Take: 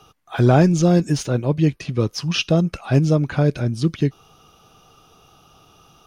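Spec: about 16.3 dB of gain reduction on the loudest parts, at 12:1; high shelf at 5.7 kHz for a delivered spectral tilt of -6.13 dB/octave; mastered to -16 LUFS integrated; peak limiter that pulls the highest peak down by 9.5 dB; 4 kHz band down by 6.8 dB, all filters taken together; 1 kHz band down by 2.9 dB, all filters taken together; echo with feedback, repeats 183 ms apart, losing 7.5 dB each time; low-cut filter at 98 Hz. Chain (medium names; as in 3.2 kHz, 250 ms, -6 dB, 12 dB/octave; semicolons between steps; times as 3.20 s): high-pass 98 Hz; peaking EQ 1 kHz -4 dB; peaking EQ 4 kHz -7.5 dB; treble shelf 5.7 kHz -6 dB; compression 12:1, threshold -28 dBFS; peak limiter -26 dBFS; feedback delay 183 ms, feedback 42%, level -7.5 dB; trim +19.5 dB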